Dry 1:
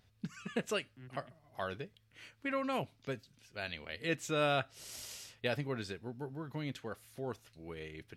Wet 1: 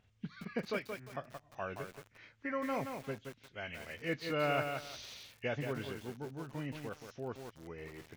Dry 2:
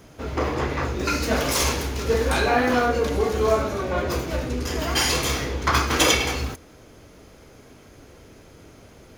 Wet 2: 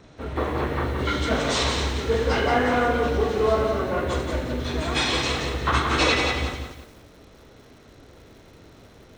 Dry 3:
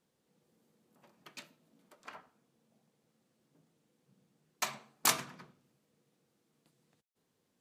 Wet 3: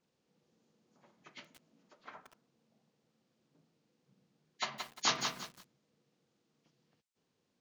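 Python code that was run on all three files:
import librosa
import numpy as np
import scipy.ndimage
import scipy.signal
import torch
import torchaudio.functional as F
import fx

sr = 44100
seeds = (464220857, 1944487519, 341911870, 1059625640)

y = fx.freq_compress(x, sr, knee_hz=1600.0, ratio=1.5)
y = fx.echo_crushed(y, sr, ms=175, feedback_pct=35, bits=8, wet_db=-5.0)
y = F.gain(torch.from_numpy(y), -1.5).numpy()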